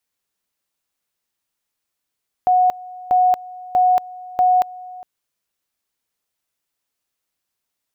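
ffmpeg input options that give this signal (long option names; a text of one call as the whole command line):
ffmpeg -f lavfi -i "aevalsrc='pow(10,(-11-21*gte(mod(t,0.64),0.23))/20)*sin(2*PI*732*t)':duration=2.56:sample_rate=44100" out.wav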